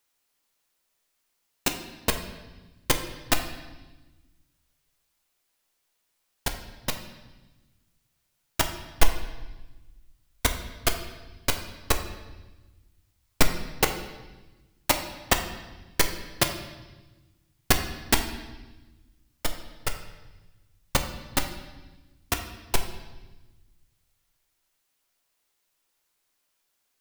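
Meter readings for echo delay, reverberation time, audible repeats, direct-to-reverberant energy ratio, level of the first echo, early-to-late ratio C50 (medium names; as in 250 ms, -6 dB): no echo, 1.2 s, no echo, 4.5 dB, no echo, 8.5 dB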